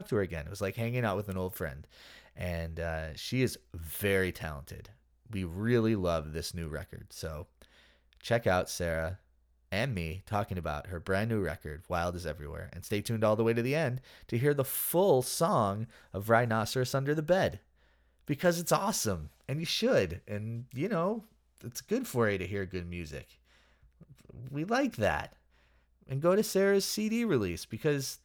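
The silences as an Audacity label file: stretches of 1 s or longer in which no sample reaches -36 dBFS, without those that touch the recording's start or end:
23.210000	24.470000	silence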